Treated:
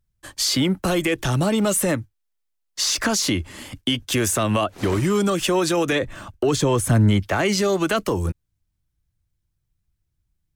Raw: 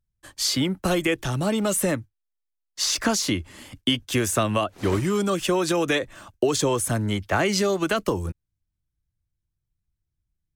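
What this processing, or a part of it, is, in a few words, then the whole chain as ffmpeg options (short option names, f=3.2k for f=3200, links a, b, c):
soft clipper into limiter: -filter_complex "[0:a]asoftclip=type=tanh:threshold=-10.5dB,alimiter=limit=-18.5dB:level=0:latency=1:release=75,asettb=1/sr,asplit=3[a][b][c];[a]atrim=end=5.924[d];[b]atrim=start=5.92:end=7.2,asetpts=PTS-STARTPTS,afade=t=in:d=0.004:c=qsin,afade=t=out:st=1.276:d=0.004:c=qsin,bass=f=250:g=6,treble=f=4k:g=-4[e];[c]atrim=start=7.196[f];[d][e]acrossfade=d=0.004:c1=hsin:c2=qsin[g];[g][f]acrossfade=d=0.004:c1=qsin:c2=hsin,volume=6dB"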